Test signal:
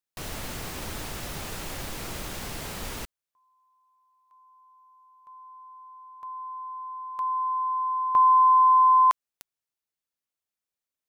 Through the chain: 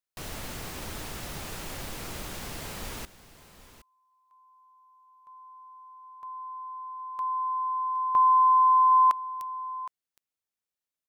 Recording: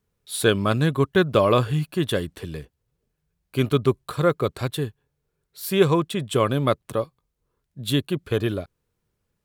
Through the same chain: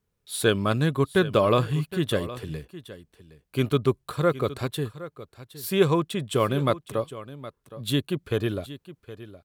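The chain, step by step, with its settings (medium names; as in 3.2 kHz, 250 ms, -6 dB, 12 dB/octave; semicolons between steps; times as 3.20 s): on a send: delay 766 ms -15.5 dB; on the sum: trim -2.5 dB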